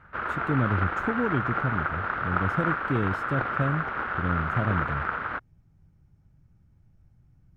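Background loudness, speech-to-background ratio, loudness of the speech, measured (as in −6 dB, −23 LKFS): −29.0 LKFS, −1.5 dB, −30.5 LKFS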